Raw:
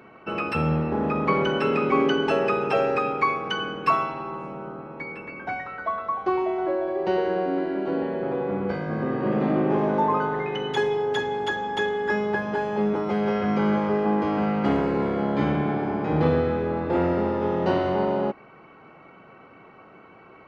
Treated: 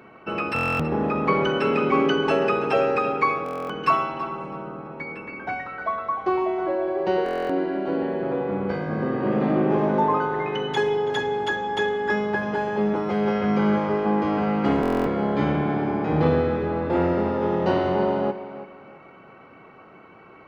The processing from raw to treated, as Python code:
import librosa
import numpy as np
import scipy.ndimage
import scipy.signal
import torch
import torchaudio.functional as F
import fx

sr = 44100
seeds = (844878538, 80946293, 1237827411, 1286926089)

y = fx.echo_tape(x, sr, ms=329, feedback_pct=30, wet_db=-12.5, lp_hz=4400.0, drive_db=11.0, wow_cents=15)
y = fx.buffer_glitch(y, sr, at_s=(0.54, 3.44, 7.24, 14.81), block=1024, repeats=10)
y = y * librosa.db_to_amplitude(1.0)